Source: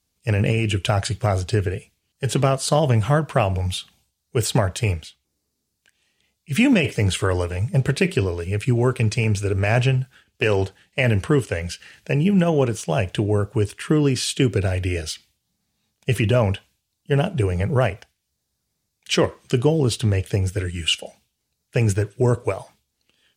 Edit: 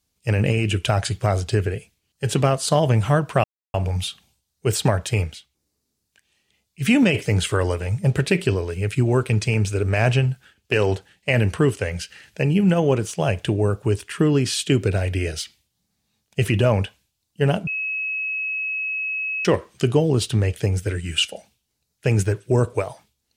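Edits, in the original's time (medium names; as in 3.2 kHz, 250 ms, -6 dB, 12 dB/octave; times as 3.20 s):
3.44 s: insert silence 0.30 s
17.37–19.15 s: bleep 2.57 kHz -23 dBFS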